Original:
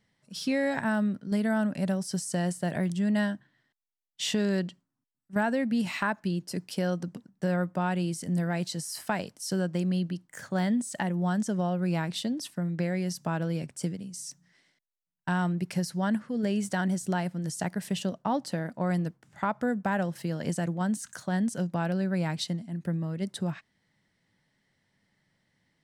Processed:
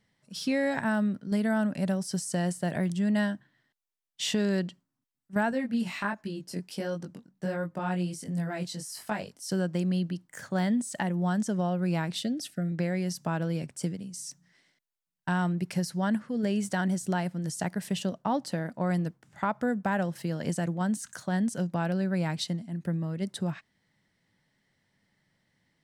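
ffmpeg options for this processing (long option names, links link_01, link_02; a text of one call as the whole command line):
ffmpeg -i in.wav -filter_complex "[0:a]asettb=1/sr,asplit=3[link_01][link_02][link_03];[link_01]atrim=end=5.514[link_04];[link_02]atrim=start=5.51:end=9.49,asetpts=PTS-STARTPTS,afade=type=in:duration=0.004:curve=qsin,afade=type=out:start_time=3.976:duration=0.004:curve=qsin,flanger=delay=18.5:depth=4:speed=1.4[link_05];[link_03]atrim=start=9.486[link_06];[link_04][link_05]acrossfade=duration=0.004:curve1=hsin:curve2=qsin[link_07];[link_07][link_06]acrossfade=duration=0.004:curve1=qsin:curve2=hsin,asettb=1/sr,asplit=3[link_08][link_09][link_10];[link_08]atrim=end=12.194[link_11];[link_09]atrim=start=12.19:end=12.72,asetpts=PTS-STARTPTS,afade=type=in:duration=0.004:curve=qsin,afade=type=out:start_time=0.526:duration=0.004:curve=qsin,asuperstop=centerf=990:order=12:qfactor=2.2[link_12];[link_10]atrim=start=12.716[link_13];[link_11][link_12]acrossfade=duration=0.004:curve1=hsin:curve2=qsin[link_14];[link_14][link_13]acrossfade=duration=0.004:curve1=qsin:curve2=hsin" out.wav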